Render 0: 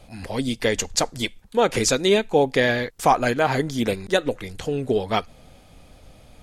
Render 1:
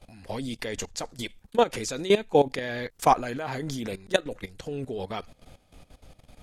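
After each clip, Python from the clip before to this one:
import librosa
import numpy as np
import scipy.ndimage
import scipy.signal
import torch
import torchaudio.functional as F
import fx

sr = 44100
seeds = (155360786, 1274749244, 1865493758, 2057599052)

y = fx.level_steps(x, sr, step_db=16)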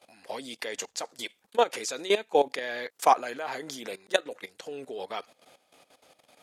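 y = scipy.signal.sosfilt(scipy.signal.butter(2, 450.0, 'highpass', fs=sr, output='sos'), x)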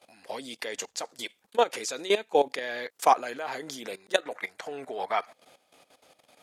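y = fx.spec_box(x, sr, start_s=4.23, length_s=1.11, low_hz=590.0, high_hz=2400.0, gain_db=9)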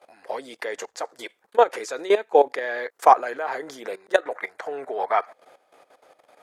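y = fx.band_shelf(x, sr, hz=810.0, db=11.0, octaves=2.9)
y = y * librosa.db_to_amplitude(-4.5)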